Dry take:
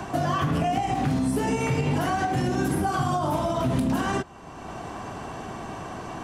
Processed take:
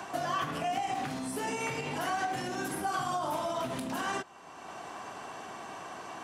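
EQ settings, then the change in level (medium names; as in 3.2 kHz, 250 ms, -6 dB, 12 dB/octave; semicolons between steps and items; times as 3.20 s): high-pass 770 Hz 6 dB/octave; -3.0 dB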